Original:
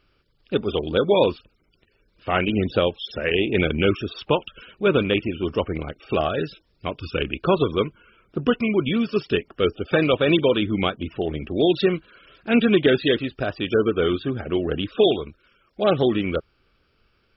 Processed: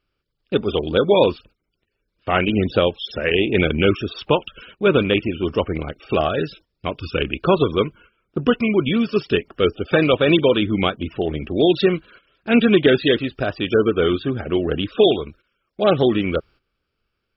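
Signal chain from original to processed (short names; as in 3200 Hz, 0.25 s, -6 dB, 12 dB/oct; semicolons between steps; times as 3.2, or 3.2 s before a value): gate -47 dBFS, range -14 dB; gain +3 dB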